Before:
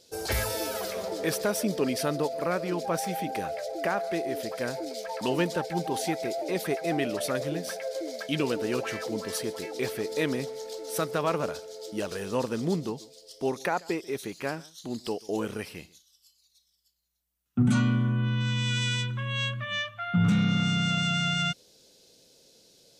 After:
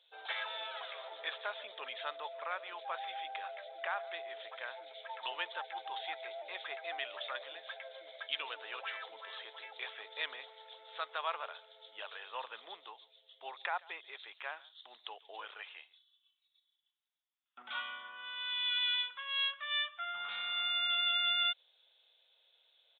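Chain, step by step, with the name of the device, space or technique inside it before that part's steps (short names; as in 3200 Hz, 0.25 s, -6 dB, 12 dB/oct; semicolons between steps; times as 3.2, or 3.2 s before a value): musical greeting card (downsampling 8000 Hz; HPF 790 Hz 24 dB/oct; bell 3500 Hz +8.5 dB 0.27 oct); gain -5.5 dB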